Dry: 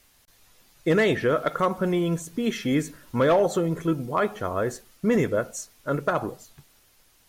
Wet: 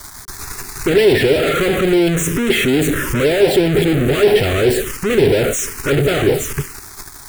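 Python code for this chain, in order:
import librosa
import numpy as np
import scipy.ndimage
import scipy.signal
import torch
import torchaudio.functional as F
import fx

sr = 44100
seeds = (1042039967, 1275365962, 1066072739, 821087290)

y = fx.fuzz(x, sr, gain_db=52.0, gate_db=-58.0)
y = fx.graphic_eq_31(y, sr, hz=(200, 400, 12500), db=(-8, 11, -8))
y = fx.env_phaser(y, sr, low_hz=450.0, high_hz=1200.0, full_db=-7.5)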